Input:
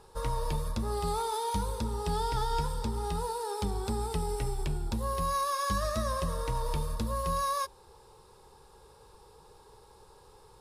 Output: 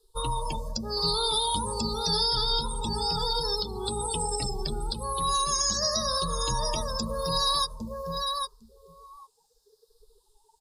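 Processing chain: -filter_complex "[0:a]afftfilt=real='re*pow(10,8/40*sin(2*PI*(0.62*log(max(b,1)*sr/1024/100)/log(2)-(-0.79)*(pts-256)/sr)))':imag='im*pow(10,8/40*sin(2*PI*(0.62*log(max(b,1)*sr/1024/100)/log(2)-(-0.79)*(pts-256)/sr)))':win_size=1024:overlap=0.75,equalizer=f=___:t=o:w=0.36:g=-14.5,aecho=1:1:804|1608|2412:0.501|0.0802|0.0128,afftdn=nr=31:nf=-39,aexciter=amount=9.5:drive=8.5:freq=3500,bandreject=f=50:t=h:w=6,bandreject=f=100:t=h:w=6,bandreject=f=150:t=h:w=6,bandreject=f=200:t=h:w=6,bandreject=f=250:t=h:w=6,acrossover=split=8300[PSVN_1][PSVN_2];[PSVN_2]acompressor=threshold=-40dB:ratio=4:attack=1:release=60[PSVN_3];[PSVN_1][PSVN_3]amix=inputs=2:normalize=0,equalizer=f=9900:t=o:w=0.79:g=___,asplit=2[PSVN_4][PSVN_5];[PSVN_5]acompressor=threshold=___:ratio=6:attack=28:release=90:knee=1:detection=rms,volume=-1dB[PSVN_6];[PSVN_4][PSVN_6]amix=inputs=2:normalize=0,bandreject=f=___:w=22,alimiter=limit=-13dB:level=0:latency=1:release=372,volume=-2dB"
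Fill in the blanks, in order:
70, -7, -33dB, 5500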